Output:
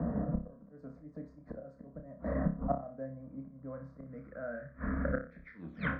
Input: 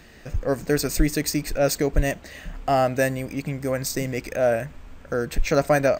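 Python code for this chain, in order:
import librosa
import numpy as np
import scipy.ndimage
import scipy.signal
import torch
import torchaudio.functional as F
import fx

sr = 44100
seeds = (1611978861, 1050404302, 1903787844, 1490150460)

p1 = fx.tape_stop_end(x, sr, length_s=0.59)
p2 = scipy.signal.sosfilt(scipy.signal.butter(4, 52.0, 'highpass', fs=sr, output='sos'), p1)
p3 = fx.env_lowpass(p2, sr, base_hz=910.0, full_db=-18.0)
p4 = fx.peak_eq(p3, sr, hz=140.0, db=13.5, octaves=2.0)
p5 = fx.rider(p4, sr, range_db=5, speed_s=0.5)
p6 = p4 + (p5 * 10.0 ** (2.5 / 20.0))
p7 = fx.auto_swell(p6, sr, attack_ms=226.0)
p8 = fx.gate_flip(p7, sr, shuts_db=-16.0, range_db=-36)
p9 = fx.fixed_phaser(p8, sr, hz=560.0, stages=8)
p10 = fx.room_flutter(p9, sr, wall_m=5.1, rt60_s=0.33)
p11 = fx.filter_sweep_lowpass(p10, sr, from_hz=890.0, to_hz=2800.0, start_s=3.49, end_s=5.76, q=3.1)
p12 = fx.band_squash(p11, sr, depth_pct=40)
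y = p12 * 10.0 ** (1.5 / 20.0)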